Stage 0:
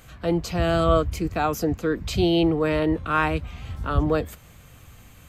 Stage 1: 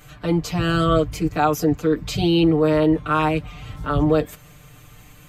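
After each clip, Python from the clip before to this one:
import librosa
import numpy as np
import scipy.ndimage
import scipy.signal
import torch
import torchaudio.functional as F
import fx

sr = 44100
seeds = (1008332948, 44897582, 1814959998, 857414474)

y = x + 0.99 * np.pad(x, (int(6.7 * sr / 1000.0), 0))[:len(x)]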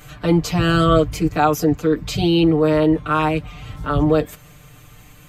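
y = fx.rider(x, sr, range_db=10, speed_s=2.0)
y = y * 10.0 ** (2.0 / 20.0)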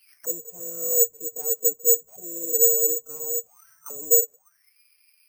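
y = fx.tracing_dist(x, sr, depth_ms=0.44)
y = fx.auto_wah(y, sr, base_hz=470.0, top_hz=2800.0, q=19.0, full_db=-18.5, direction='down')
y = (np.kron(scipy.signal.resample_poly(y, 1, 6), np.eye(6)[0]) * 6)[:len(y)]
y = y * 10.0 ** (-4.5 / 20.0)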